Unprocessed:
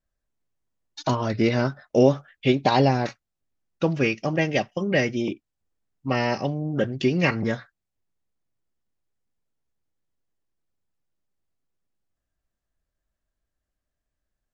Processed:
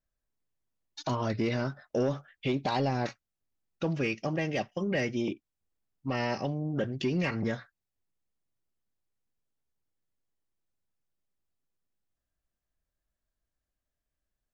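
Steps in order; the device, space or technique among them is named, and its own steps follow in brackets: soft clipper into limiter (soft clip -10.5 dBFS, distortion -18 dB; limiter -16.5 dBFS, peak gain reduction 5.5 dB); gain -4.5 dB

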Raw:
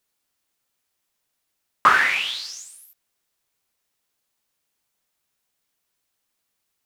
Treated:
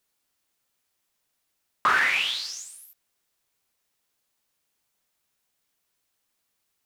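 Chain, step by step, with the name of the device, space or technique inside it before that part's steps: soft clipper into limiter (soft clip -5.5 dBFS, distortion -21 dB; limiter -13.5 dBFS, peak gain reduction 6.5 dB)

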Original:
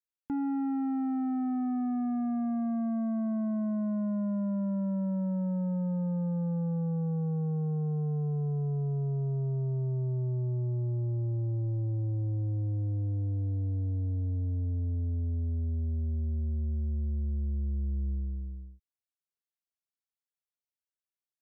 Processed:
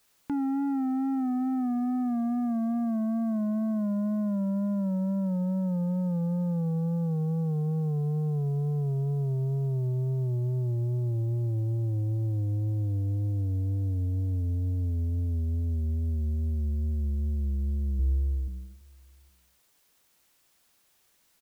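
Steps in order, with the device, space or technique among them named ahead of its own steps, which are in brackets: 17.99–18.48 comb 2.3 ms, depth 81%; outdoor echo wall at 140 m, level -29 dB; noise-reduction cassette on a plain deck (mismatched tape noise reduction encoder only; wow and flutter; white noise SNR 39 dB); gain +2.5 dB

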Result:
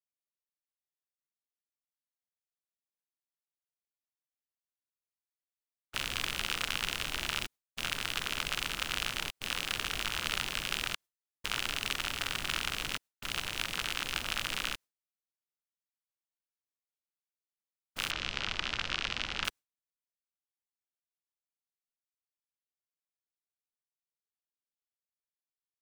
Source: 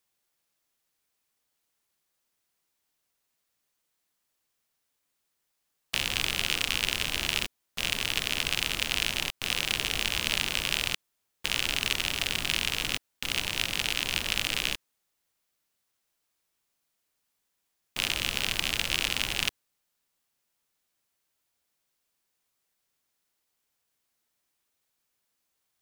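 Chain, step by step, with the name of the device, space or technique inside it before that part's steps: gate with hold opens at -30 dBFS; 18.11–19.45 LPF 5800 Hz 24 dB/oct; octave pedal (harmoniser -12 st -6 dB); gain -6.5 dB

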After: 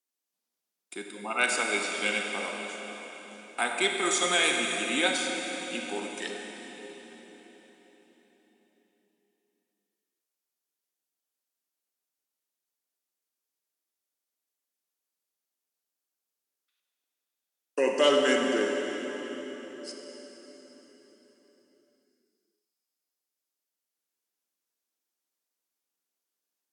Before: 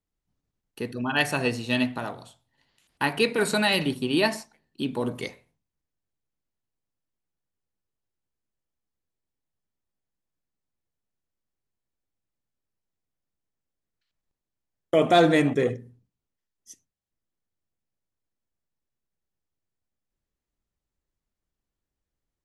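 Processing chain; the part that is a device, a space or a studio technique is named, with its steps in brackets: Bessel high-pass 450 Hz, order 6; high shelf 5000 Hz +11.5 dB; slowed and reverbed (varispeed -16%; reverb RT60 4.6 s, pre-delay 33 ms, DRR 1.5 dB); gain -4 dB

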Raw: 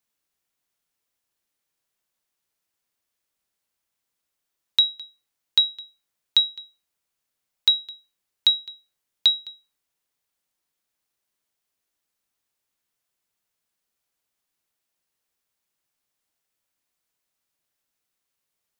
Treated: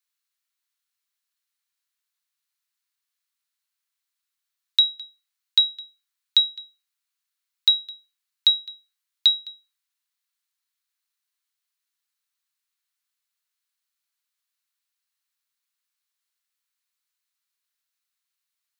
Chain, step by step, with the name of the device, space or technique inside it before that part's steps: headphones lying on a table (HPF 1100 Hz 24 dB/oct; bell 4100 Hz +5 dB 0.25 oct); gain -2.5 dB

